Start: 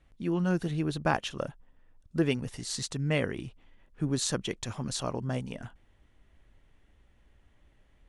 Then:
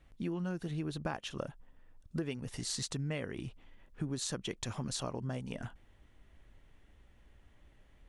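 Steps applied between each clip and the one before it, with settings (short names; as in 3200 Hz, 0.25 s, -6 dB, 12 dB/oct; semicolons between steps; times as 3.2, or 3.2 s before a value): compressor 6:1, threshold -35 dBFS, peak gain reduction 13.5 dB; gain +1 dB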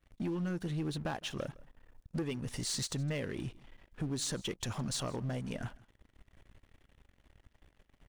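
sample leveller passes 3; echo 0.161 s -22.5 dB; gain -8 dB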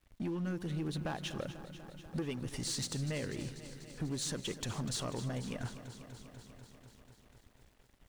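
crackle 340/s -61 dBFS; lo-fi delay 0.245 s, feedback 80%, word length 10-bit, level -13 dB; gain -1.5 dB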